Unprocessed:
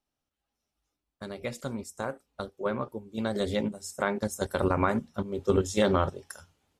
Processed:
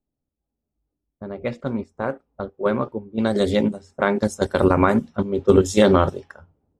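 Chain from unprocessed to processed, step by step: level-controlled noise filter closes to 400 Hz, open at -25 dBFS; dynamic bell 300 Hz, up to +4 dB, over -37 dBFS, Q 0.83; trim +7 dB

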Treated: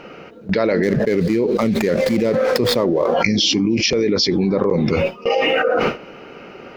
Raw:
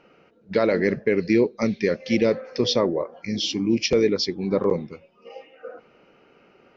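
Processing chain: 0.83–3.14 s: median filter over 15 samples; gate with hold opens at -43 dBFS; level flattener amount 100%; trim -1 dB

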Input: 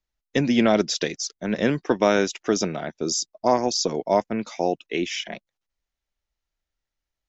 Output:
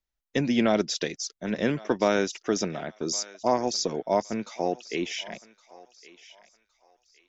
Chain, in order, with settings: thinning echo 1114 ms, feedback 36%, high-pass 850 Hz, level -17 dB; trim -4 dB

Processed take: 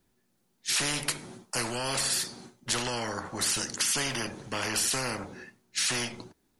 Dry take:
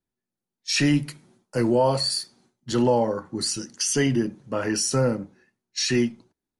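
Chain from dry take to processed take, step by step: spectrum-flattening compressor 4:1; trim -3.5 dB

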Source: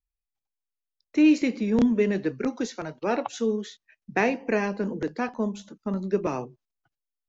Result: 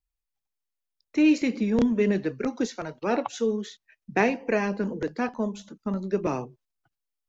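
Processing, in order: phaser 1.9 Hz, delay 2.3 ms, feedback 25%

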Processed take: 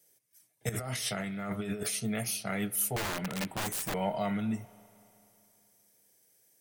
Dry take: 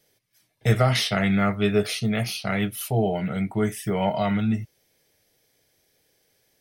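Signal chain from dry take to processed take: high-pass 130 Hz 12 dB/octave; resonant high shelf 5.7 kHz +10 dB, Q 1.5; 0.69–1.95 s: compressor with a negative ratio -28 dBFS, ratio -1; 2.96–3.94 s: integer overflow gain 21 dB; spring tank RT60 3 s, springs 34/38 ms, chirp 30 ms, DRR 18.5 dB; trim -7.5 dB

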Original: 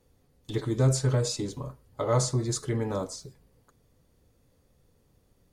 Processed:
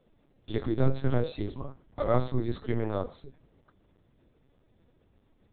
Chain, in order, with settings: LPC vocoder at 8 kHz pitch kept

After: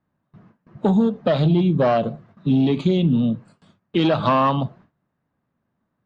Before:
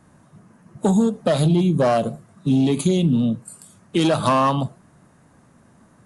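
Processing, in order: low-pass 4 kHz 24 dB/octave; gate with hold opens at -40 dBFS

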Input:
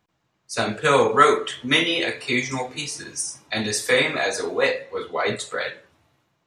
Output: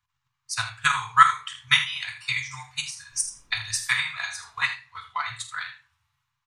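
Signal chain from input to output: elliptic band-stop 120–1000 Hz, stop band 40 dB; transient shaper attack +11 dB, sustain -1 dB; 3.11–3.77 s: added noise brown -52 dBFS; on a send: early reflections 46 ms -12 dB, 79 ms -12.5 dB; on the sum: simulated room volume 130 m³, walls furnished, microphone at 0.36 m; trim -7.5 dB

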